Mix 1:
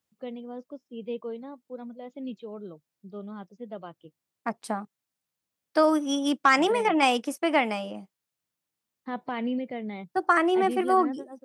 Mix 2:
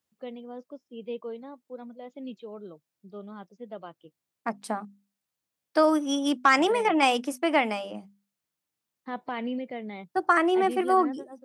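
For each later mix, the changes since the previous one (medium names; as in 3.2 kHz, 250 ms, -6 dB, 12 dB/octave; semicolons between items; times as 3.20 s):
first voice: add bass shelf 190 Hz -8 dB; second voice: add hum notches 50/100/150/200/250 Hz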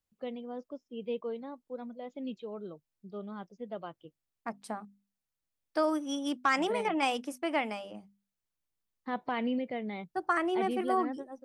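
second voice -7.5 dB; master: remove high-pass 130 Hz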